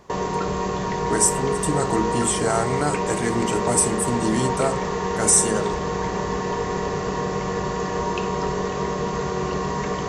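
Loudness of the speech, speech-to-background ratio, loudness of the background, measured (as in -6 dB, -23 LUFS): -22.0 LUFS, 3.5 dB, -25.5 LUFS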